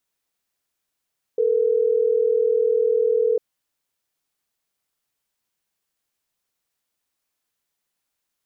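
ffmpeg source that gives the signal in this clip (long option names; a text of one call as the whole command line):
ffmpeg -f lavfi -i "aevalsrc='0.112*(sin(2*PI*440*t)+sin(2*PI*480*t))*clip(min(mod(t,6),2-mod(t,6))/0.005,0,1)':duration=3.12:sample_rate=44100" out.wav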